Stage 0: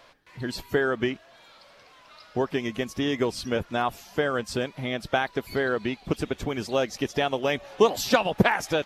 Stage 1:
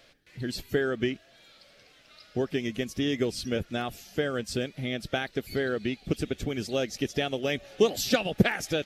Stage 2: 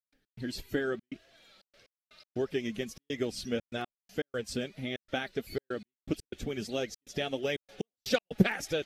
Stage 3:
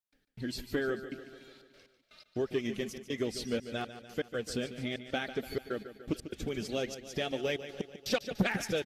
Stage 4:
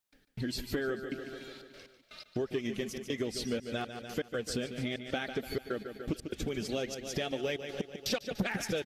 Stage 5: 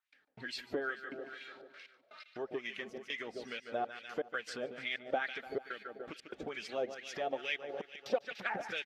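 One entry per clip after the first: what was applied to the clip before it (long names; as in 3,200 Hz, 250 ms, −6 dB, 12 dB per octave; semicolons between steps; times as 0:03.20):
parametric band 970 Hz −11 dB 1.3 octaves; notch filter 1,000 Hz, Q 5.9
flanger 1.6 Hz, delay 1.8 ms, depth 3.7 ms, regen +47%; gate pattern ".x.xxxxx.xxxx.x." 121 BPM −60 dB
repeating echo 146 ms, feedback 60%, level −13 dB; soft clipping −20 dBFS, distortion −13 dB
downward compressor 2.5 to 1, threshold −42 dBFS, peak gain reduction 12.5 dB; level +7.5 dB
LFO wah 2.3 Hz 630–2,500 Hz, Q 2; level +5.5 dB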